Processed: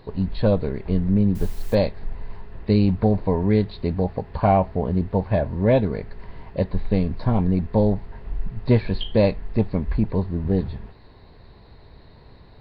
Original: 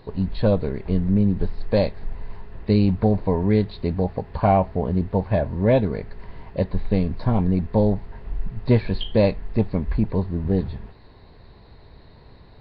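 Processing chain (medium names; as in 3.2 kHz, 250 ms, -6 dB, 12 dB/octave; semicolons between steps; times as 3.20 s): 1.35–1.75 s: word length cut 8-bit, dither triangular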